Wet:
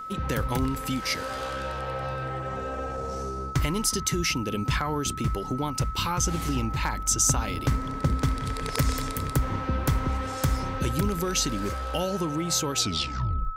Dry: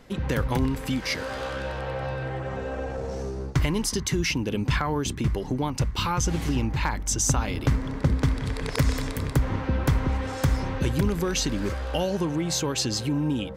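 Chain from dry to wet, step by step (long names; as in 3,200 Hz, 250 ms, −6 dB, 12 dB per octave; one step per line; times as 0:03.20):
turntable brake at the end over 0.82 s
high-shelf EQ 5,800 Hz +9 dB
reversed playback
upward compression, threshold −35 dBFS
reversed playback
surface crackle 21 per second −46 dBFS
steady tone 1,300 Hz −32 dBFS
level −2.5 dB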